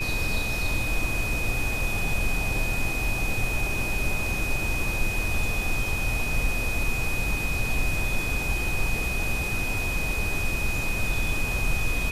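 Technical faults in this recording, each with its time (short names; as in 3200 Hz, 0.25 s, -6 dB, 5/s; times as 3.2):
tone 2500 Hz -29 dBFS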